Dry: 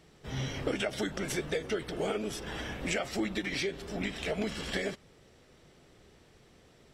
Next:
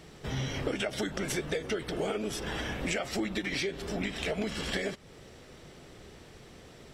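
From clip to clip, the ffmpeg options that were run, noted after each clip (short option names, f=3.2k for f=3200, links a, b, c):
-af "acompressor=threshold=-44dB:ratio=2,volume=8.5dB"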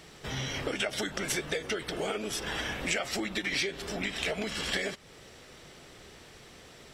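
-af "tiltshelf=f=680:g=-4"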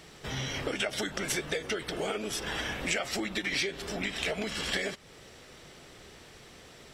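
-af anull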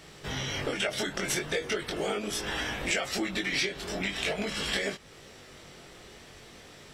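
-af "flanger=delay=19.5:depth=2.3:speed=0.42,volume=4.5dB"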